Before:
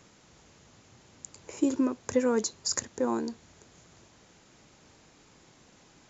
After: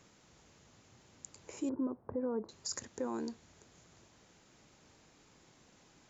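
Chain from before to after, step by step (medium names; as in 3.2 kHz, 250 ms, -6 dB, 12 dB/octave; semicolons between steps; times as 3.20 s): 1.69–2.49 s: low-pass 1.1 kHz 24 dB/octave; peak limiter -22 dBFS, peak gain reduction 8.5 dB; trim -5.5 dB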